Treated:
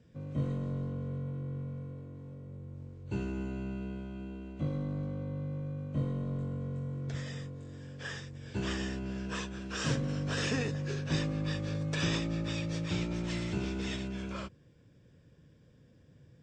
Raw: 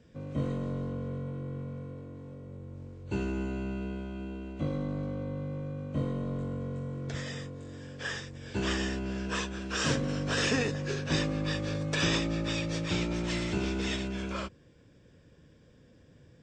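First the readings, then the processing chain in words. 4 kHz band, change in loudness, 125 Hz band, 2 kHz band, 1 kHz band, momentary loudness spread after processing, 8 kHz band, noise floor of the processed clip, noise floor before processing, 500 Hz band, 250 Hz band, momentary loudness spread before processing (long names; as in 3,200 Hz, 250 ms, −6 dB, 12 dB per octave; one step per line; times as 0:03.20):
−5.5 dB, −3.0 dB, 0.0 dB, −5.5 dB, −5.5 dB, 11 LU, −5.5 dB, −61 dBFS, −59 dBFS, −5.0 dB, −2.5 dB, 12 LU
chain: parametric band 130 Hz +6.5 dB 1.2 octaves
level −5.5 dB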